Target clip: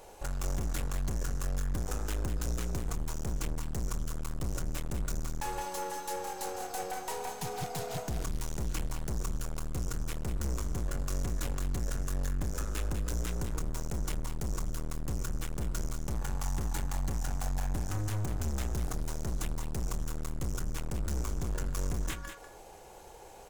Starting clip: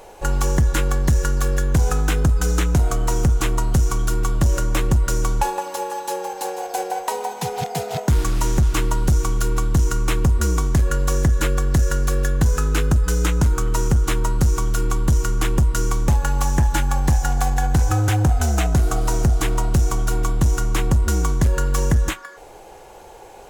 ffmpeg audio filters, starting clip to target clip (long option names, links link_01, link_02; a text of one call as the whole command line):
ffmpeg -i in.wav -af "bass=frequency=250:gain=3,treble=frequency=4000:gain=5,aeval=exprs='(tanh(17.8*val(0)+0.55)-tanh(0.55))/17.8':channel_layout=same,aecho=1:1:194:0.376,volume=-7.5dB" out.wav